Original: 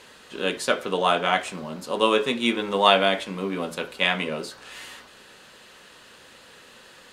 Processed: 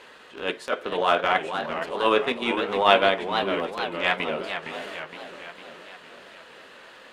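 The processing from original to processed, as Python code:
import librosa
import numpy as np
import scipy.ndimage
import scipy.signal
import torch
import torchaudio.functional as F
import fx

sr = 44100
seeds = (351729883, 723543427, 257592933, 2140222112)

y = fx.bass_treble(x, sr, bass_db=-10, treble_db=-12)
y = fx.transient(y, sr, attack_db=-12, sustain_db=-8)
y = fx.echo_warbled(y, sr, ms=460, feedback_pct=57, rate_hz=2.8, cents=206, wet_db=-8.5)
y = y * librosa.db_to_amplitude(3.5)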